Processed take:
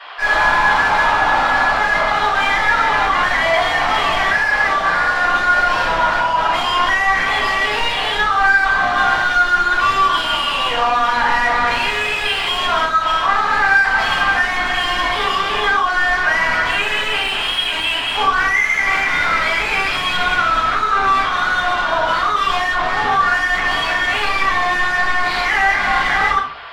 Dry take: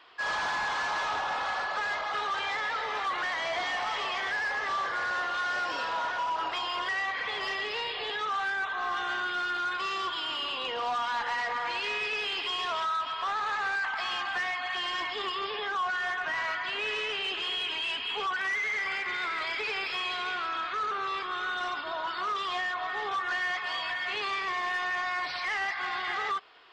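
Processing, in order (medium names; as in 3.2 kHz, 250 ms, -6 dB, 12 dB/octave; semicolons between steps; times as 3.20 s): high-pass 560 Hz 12 dB/octave; overdrive pedal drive 19 dB, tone 1.6 kHz, clips at -21.5 dBFS; simulated room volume 240 m³, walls furnished, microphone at 6.2 m; trim +3.5 dB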